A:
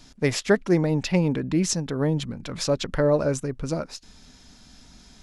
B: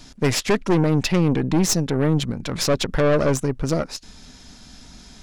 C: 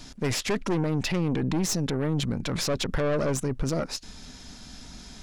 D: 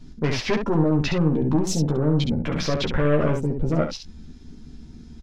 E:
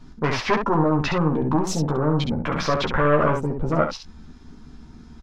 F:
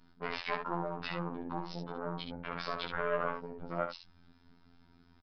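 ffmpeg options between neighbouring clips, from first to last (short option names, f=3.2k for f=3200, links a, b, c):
-af "aeval=exprs='(tanh(14.1*val(0)+0.6)-tanh(0.6))/14.1':c=same,volume=9dB"
-af "alimiter=limit=-18.5dB:level=0:latency=1:release=12"
-af "afwtdn=0.0141,highshelf=f=6.4k:g=-9,aecho=1:1:13|68:0.631|0.531,volume=3dB"
-af "equalizer=f=1.1k:w=0.97:g=12.5,volume=-2dB"
-af "lowshelf=f=420:g=-9.5,afftfilt=real='hypot(re,im)*cos(PI*b)':imag='0':win_size=2048:overlap=0.75,aresample=11025,aresample=44100,volume=-8dB"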